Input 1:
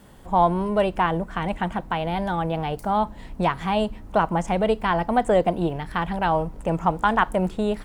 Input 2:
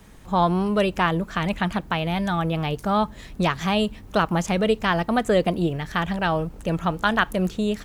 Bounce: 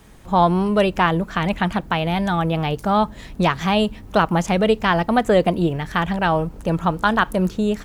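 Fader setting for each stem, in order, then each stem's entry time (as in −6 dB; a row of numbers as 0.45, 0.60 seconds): −6.5, +1.0 decibels; 0.00, 0.00 seconds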